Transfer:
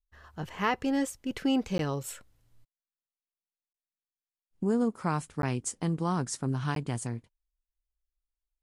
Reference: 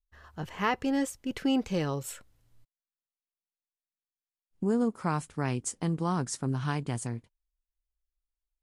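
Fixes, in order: interpolate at 1.78/3.73/5.42/6.75, 12 ms

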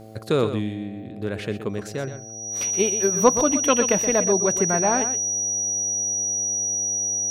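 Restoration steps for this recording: de-hum 109.6 Hz, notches 7; notch 5800 Hz, Q 30; inverse comb 0.123 s -10.5 dB

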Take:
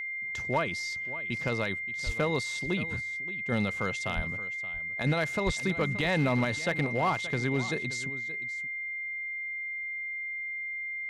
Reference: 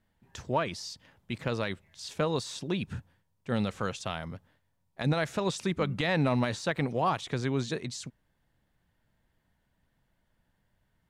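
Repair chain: clip repair -20 dBFS; notch 2100 Hz, Q 30; de-plosive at 2.05/4.15/5.45; inverse comb 0.575 s -15.5 dB

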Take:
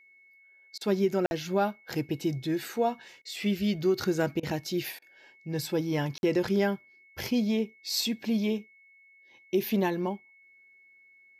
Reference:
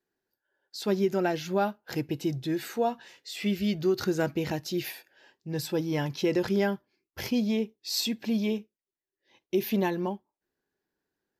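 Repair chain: notch 2200 Hz, Q 30; interpolate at 1.26/6.18, 51 ms; interpolate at 0.78/3.22/4.4/4.99, 29 ms

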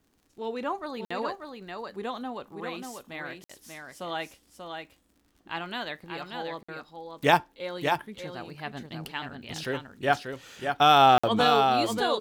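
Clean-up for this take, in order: de-click; interpolate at 1.05/3.44/6.63/11.18, 55 ms; inverse comb 0.587 s -5.5 dB

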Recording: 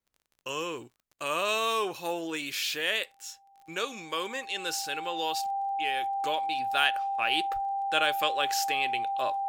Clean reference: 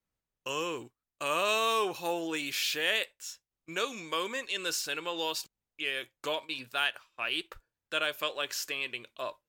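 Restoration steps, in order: de-click; notch 790 Hz, Q 30; gain 0 dB, from 6.71 s -4 dB

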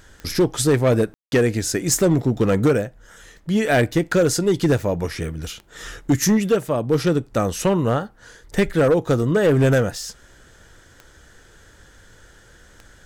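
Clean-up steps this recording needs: clip repair -11 dBFS; de-click; room tone fill 1.14–1.32

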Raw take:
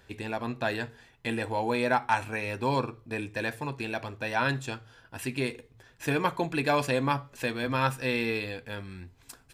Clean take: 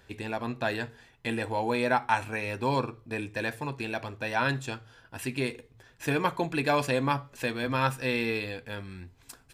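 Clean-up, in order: clip repair -12.5 dBFS

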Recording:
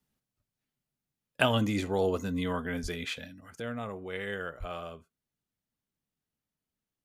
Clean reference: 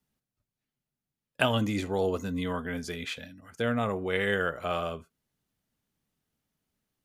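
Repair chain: 2.82–2.94 HPF 140 Hz 24 dB/oct; 3.6 gain correction +8.5 dB; 4.59–4.71 HPF 140 Hz 24 dB/oct

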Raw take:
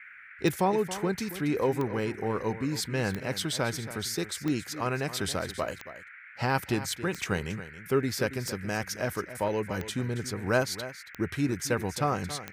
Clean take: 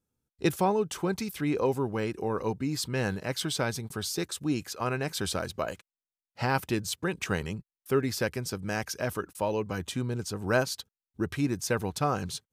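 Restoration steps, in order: de-click; noise print and reduce 30 dB; inverse comb 0.276 s -13.5 dB

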